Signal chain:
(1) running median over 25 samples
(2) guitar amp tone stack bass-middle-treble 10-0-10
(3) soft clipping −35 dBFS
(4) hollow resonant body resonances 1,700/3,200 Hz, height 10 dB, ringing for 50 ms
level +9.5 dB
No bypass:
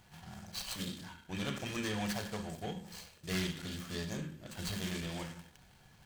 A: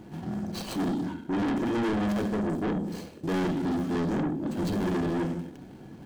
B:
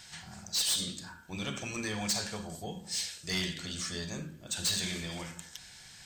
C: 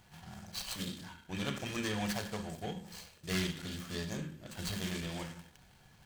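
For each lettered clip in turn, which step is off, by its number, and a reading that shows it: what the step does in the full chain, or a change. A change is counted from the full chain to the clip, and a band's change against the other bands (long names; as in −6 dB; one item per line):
2, 8 kHz band −13.5 dB
1, 8 kHz band +11.5 dB
3, distortion level −22 dB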